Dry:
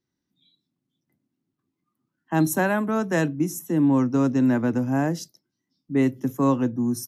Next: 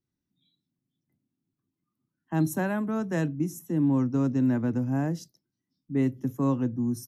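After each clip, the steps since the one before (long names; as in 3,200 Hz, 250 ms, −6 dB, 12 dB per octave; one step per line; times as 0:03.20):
low-shelf EQ 220 Hz +11 dB
level −9 dB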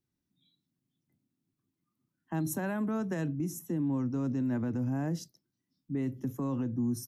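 brickwall limiter −24.5 dBFS, peak gain reduction 9.5 dB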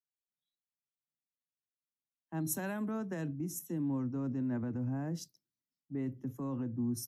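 multiband upward and downward expander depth 70%
level −4 dB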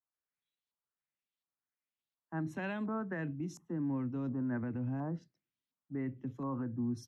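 auto-filter low-pass saw up 1.4 Hz 990–4,200 Hz
level −1 dB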